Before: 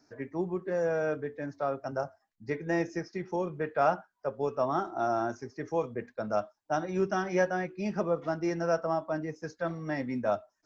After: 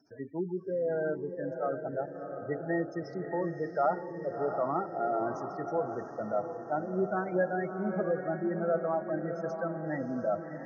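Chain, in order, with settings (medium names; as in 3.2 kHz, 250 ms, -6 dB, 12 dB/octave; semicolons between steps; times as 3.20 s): spectral gate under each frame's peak -15 dB strong; echo that smears into a reverb 676 ms, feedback 52%, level -7 dB; trim -1.5 dB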